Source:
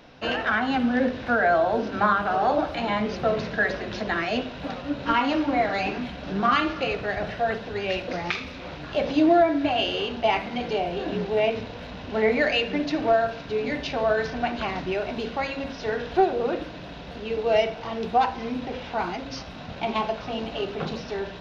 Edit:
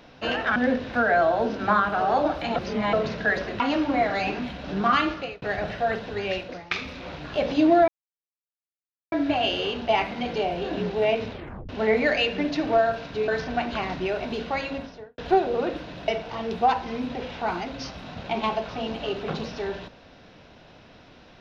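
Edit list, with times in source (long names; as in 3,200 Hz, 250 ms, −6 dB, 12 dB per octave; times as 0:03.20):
0:00.56–0:00.89: remove
0:02.89–0:03.26: reverse
0:03.93–0:05.19: remove
0:06.67–0:07.01: fade out
0:07.85–0:08.30: fade out, to −20 dB
0:09.47: splice in silence 1.24 s
0:11.66: tape stop 0.38 s
0:13.63–0:14.14: remove
0:15.53–0:16.04: fade out and dull
0:16.94–0:17.60: remove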